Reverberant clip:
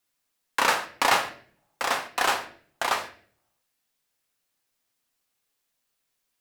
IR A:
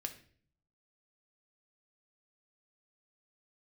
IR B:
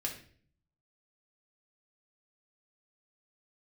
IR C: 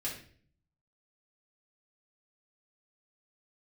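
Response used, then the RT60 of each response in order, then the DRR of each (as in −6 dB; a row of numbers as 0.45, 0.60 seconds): A; 0.50, 0.50, 0.50 seconds; 5.0, −0.5, −6.0 decibels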